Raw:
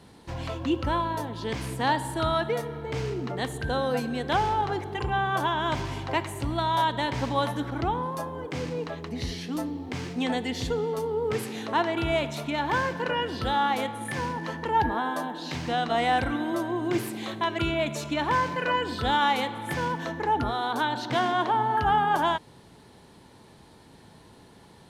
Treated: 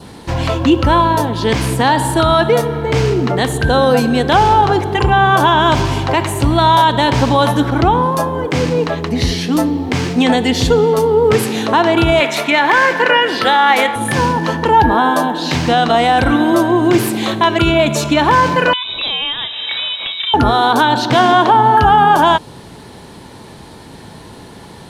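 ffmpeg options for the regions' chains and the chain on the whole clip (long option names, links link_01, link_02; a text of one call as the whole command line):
ffmpeg -i in.wav -filter_complex "[0:a]asettb=1/sr,asplit=3[link_01][link_02][link_03];[link_01]atrim=end=12.204[link_04];[link_02]atrim=start=12.2:end=13.96,asetpts=PTS-STARTPTS,afade=type=in:duration=0.004:curve=qsin,afade=type=out:start_time=1.756:duration=0.004:curve=qsin,highpass=320,equalizer=frequency=2000:width=2.5:gain=12.5[link_05];[link_03]atrim=start=13.956[link_06];[link_04][link_05]acrossfade=duration=0.004:curve1=hsin:curve2=qsin[link_07];[link_07][link_06]acrossfade=duration=0.004:curve1=qsin:curve2=hsin,asettb=1/sr,asplit=3[link_08][link_09][link_10];[link_08]atrim=end=18.734[link_11];[link_09]atrim=start=18.73:end=20.34,asetpts=PTS-STARTPTS,afade=type=in:duration=0.004:curve=qsin,afade=type=out:start_time=1.606:duration=0.004:curve=qsin,lowpass=frequency=3400:width_type=q:width=0.5098,lowpass=frequency=3400:width_type=q:width=0.6013,lowpass=frequency=3400:width_type=q:width=0.9,lowpass=frequency=3400:width_type=q:width=2.563,afreqshift=-4000,acrossover=split=230|1500[link_12][link_13][link_14];[link_12]acompressor=threshold=-55dB:ratio=4[link_15];[link_13]acompressor=threshold=-48dB:ratio=4[link_16];[link_14]acompressor=threshold=-37dB:ratio=4[link_17];[link_15][link_16][link_17]amix=inputs=3:normalize=0[link_18];[link_10]atrim=start=20.336[link_19];[link_11][link_18]acrossfade=duration=0.004:curve1=hsin:curve2=qsin[link_20];[link_20][link_19]acrossfade=duration=0.004:curve1=qsin:curve2=hsin,adynamicequalizer=threshold=0.00316:dfrequency=2000:dqfactor=4.1:tfrequency=2000:tqfactor=4.1:attack=5:release=100:ratio=0.375:range=3:mode=cutabove:tftype=bell,alimiter=level_in=17.5dB:limit=-1dB:release=50:level=0:latency=1,volume=-1dB" out.wav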